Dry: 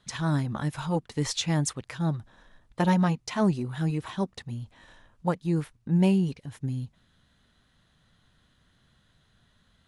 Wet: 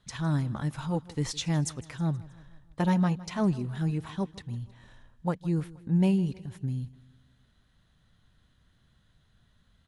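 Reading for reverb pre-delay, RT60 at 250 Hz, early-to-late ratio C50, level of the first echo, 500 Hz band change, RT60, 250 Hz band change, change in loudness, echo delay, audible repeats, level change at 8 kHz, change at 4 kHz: no reverb, no reverb, no reverb, -20.0 dB, -4.0 dB, no reverb, -1.5 dB, -2.0 dB, 159 ms, 3, -4.5 dB, -4.5 dB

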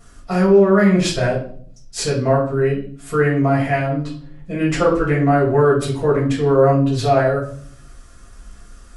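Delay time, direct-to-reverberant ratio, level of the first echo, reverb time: no echo, -9.0 dB, no echo, 0.55 s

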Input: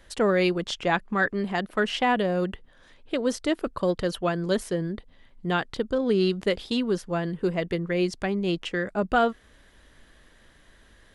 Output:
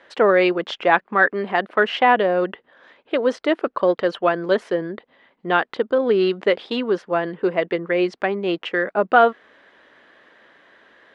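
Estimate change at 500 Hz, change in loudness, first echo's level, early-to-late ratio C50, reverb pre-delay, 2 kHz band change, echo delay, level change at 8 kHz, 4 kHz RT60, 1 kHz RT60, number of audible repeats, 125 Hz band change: +7.0 dB, +6.0 dB, no echo, no reverb, no reverb, +8.0 dB, no echo, under -10 dB, no reverb, no reverb, no echo, -4.5 dB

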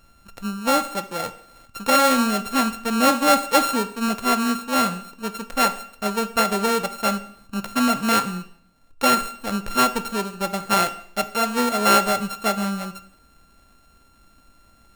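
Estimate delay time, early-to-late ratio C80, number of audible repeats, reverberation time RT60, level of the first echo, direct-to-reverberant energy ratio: no echo, 18.0 dB, no echo, 0.65 s, no echo, 11.0 dB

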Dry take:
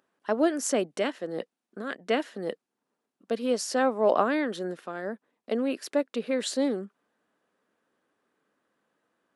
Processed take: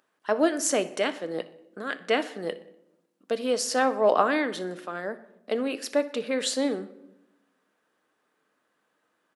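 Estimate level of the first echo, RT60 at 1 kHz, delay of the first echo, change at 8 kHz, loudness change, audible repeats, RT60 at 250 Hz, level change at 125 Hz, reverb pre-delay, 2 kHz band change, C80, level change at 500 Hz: -20.5 dB, 0.75 s, 61 ms, +4.5 dB, +1.5 dB, 3, 1.3 s, -1.0 dB, 6 ms, +4.0 dB, 18.0 dB, +1.5 dB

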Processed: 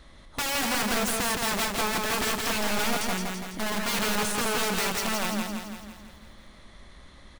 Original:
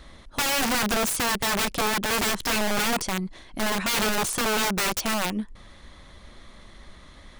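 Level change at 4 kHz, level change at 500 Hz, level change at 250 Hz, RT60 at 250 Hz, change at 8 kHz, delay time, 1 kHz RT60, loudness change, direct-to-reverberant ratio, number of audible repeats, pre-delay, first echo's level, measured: -2.5 dB, -2.0 dB, -2.0 dB, no reverb, -2.5 dB, 167 ms, no reverb, -2.5 dB, no reverb, 7, no reverb, -3.5 dB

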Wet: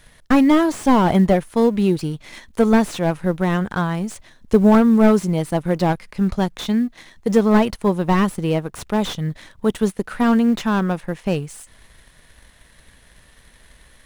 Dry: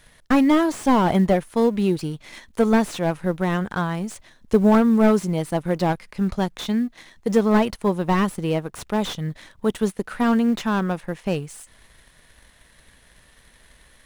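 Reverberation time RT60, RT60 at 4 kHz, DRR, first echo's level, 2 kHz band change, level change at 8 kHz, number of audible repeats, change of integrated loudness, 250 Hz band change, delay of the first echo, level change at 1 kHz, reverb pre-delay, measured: no reverb, no reverb, no reverb, no echo, +2.0 dB, +2.0 dB, no echo, +3.0 dB, +3.0 dB, no echo, +2.0 dB, no reverb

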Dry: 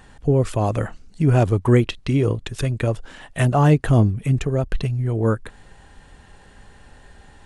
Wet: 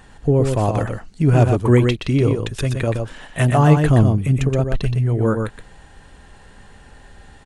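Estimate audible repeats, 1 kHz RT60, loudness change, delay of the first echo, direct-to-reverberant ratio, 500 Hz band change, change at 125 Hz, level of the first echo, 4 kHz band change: 1, no reverb, +2.5 dB, 122 ms, no reverb, +2.5 dB, +2.5 dB, -5.5 dB, +2.5 dB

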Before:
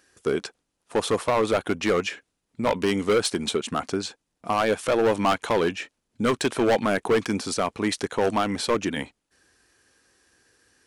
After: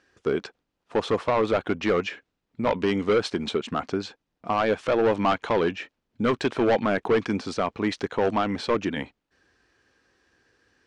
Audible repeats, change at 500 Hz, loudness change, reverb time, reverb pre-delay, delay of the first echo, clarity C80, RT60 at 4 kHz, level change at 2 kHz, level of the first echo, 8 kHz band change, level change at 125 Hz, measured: no echo, -0.5 dB, -1.0 dB, no reverb, no reverb, no echo, no reverb, no reverb, -1.5 dB, no echo, under -10 dB, 0.0 dB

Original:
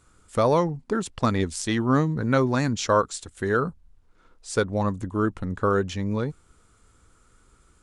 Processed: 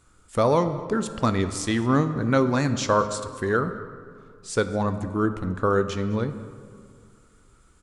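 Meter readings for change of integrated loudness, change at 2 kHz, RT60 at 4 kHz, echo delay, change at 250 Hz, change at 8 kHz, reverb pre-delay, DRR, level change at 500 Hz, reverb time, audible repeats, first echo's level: +0.5 dB, +0.5 dB, 1.2 s, 211 ms, +1.0 dB, 0.0 dB, 14 ms, 9.5 dB, +0.5 dB, 2.2 s, 1, -21.0 dB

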